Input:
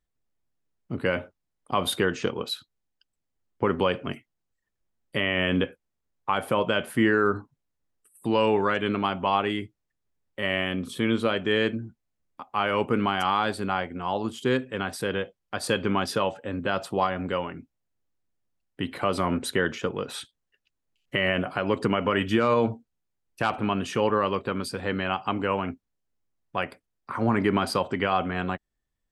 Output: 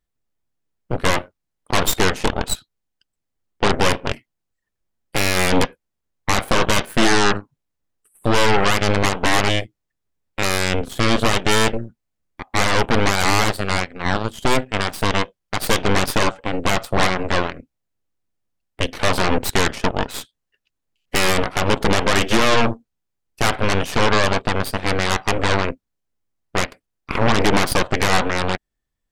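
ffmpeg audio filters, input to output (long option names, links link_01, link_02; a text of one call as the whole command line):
ffmpeg -i in.wav -filter_complex "[0:a]asettb=1/sr,asplit=3[link_01][link_02][link_03];[link_01]atrim=end=13.614[link_04];[link_02]atrim=start=13.61:end=14.43,asetpts=PTS-STARTPTS,afade=type=in:duration=0.004:curve=qsin,afade=type=out:start_time=0.816:duration=0.004:curve=qsin,equalizer=frequency=350:width=1.1:gain=-8[link_05];[link_03]atrim=start=14.426[link_06];[link_04][link_05]acrossfade=duration=0.004:curve1=hsin:curve2=qsin[link_07];[link_07][link_06]acrossfade=duration=0.004:curve1=qsin:curve2=hsin,aeval=exprs='0.282*(cos(1*acos(clip(val(0)/0.282,-1,1)))-cos(1*PI/2))+0.141*(cos(8*acos(clip(val(0)/0.282,-1,1)))-cos(8*PI/2))':channel_layout=same,volume=2dB" out.wav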